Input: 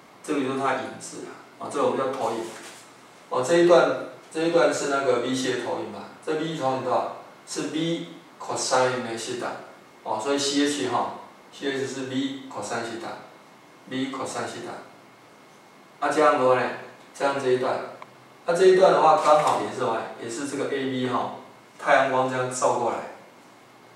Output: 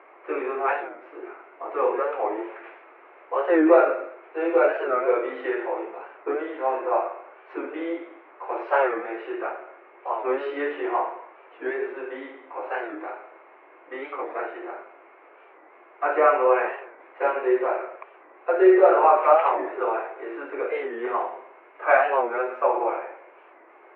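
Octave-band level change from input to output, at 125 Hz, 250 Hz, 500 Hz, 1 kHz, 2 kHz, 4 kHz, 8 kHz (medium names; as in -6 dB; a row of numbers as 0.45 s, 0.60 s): under -35 dB, -2.0 dB, +0.5 dB, +0.5 dB, 0.0 dB, under -15 dB, under -40 dB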